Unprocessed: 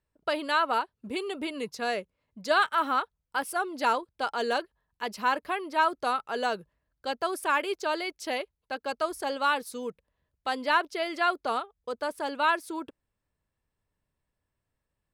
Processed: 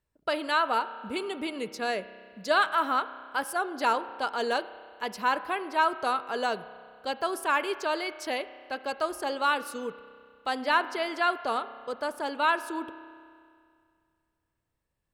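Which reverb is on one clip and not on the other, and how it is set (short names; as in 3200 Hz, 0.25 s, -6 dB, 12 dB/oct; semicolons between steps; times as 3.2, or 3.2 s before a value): spring tank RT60 2.2 s, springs 31 ms, chirp 70 ms, DRR 13 dB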